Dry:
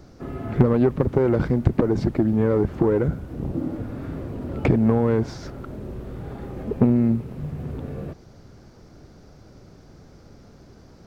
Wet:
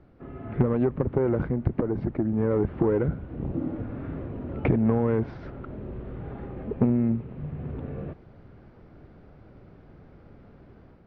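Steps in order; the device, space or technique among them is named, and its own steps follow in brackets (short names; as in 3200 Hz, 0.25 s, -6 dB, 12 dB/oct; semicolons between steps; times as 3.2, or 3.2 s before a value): 0.84–2.51 dynamic EQ 3300 Hz, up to -5 dB, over -45 dBFS, Q 1; action camera in a waterproof case (LPF 2900 Hz 24 dB/oct; AGC gain up to 6 dB; gain -8.5 dB; AAC 64 kbps 48000 Hz)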